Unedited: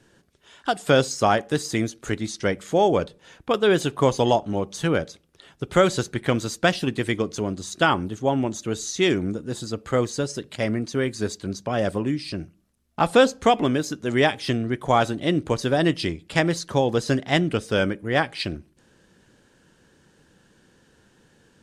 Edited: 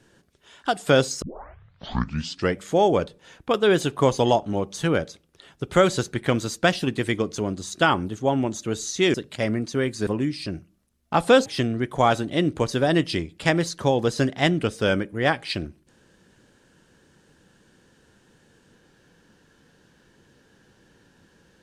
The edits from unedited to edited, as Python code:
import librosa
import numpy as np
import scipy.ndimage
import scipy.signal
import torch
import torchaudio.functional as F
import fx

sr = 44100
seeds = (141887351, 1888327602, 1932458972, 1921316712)

y = fx.edit(x, sr, fx.tape_start(start_s=1.22, length_s=1.36),
    fx.cut(start_s=9.14, length_s=1.2),
    fx.cut(start_s=11.27, length_s=0.66),
    fx.cut(start_s=13.32, length_s=1.04), tone=tone)